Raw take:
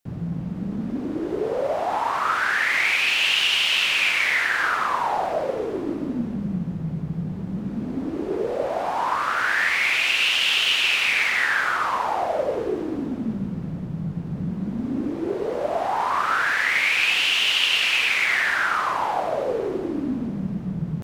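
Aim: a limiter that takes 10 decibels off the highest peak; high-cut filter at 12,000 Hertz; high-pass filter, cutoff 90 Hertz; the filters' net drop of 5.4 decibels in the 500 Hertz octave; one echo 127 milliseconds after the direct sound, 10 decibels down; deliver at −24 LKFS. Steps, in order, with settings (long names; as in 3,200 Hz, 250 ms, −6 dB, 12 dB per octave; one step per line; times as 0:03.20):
high-pass filter 90 Hz
low-pass filter 12,000 Hz
parametric band 500 Hz −7 dB
brickwall limiter −16 dBFS
single-tap delay 127 ms −10 dB
level +1 dB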